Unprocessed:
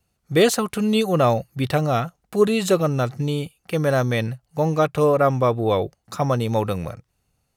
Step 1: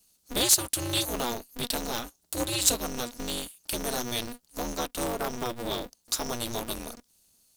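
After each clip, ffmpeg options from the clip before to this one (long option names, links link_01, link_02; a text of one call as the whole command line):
ffmpeg -i in.wav -af "acompressor=threshold=-34dB:ratio=1.5,aexciter=amount=9:drive=3.7:freq=3100,aeval=exprs='val(0)*sgn(sin(2*PI*120*n/s))':channel_layout=same,volume=-7dB" out.wav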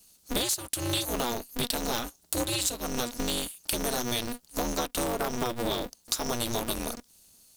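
ffmpeg -i in.wav -af "acompressor=threshold=-32dB:ratio=12,volume=6.5dB" out.wav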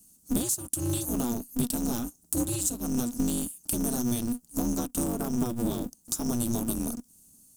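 ffmpeg -i in.wav -af "equalizer=frequency=125:width_type=o:width=1:gain=4,equalizer=frequency=250:width_type=o:width=1:gain=9,equalizer=frequency=500:width_type=o:width=1:gain=-7,equalizer=frequency=1000:width_type=o:width=1:gain=-4,equalizer=frequency=2000:width_type=o:width=1:gain=-12,equalizer=frequency=4000:width_type=o:width=1:gain=-12,equalizer=frequency=8000:width_type=o:width=1:gain=5" out.wav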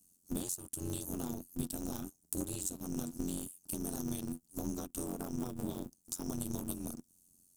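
ffmpeg -i in.wav -af "tremolo=f=89:d=0.824,volume=-6.5dB" out.wav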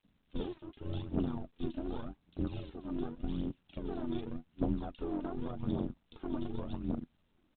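ffmpeg -i in.wav -filter_complex "[0:a]aphaser=in_gain=1:out_gain=1:delay=3.4:decay=0.61:speed=0.87:type=triangular,acrossover=split=2400[link_01][link_02];[link_01]adelay=40[link_03];[link_03][link_02]amix=inputs=2:normalize=0,volume=1dB" -ar 8000 -c:a pcm_mulaw out.wav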